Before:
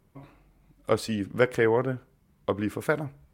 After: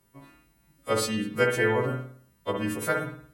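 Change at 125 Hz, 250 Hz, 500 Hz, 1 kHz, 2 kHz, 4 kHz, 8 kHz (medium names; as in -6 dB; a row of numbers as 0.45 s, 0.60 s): 0.0 dB, -0.5 dB, -1.5 dB, +1.5 dB, +3.0 dB, +5.0 dB, +8.5 dB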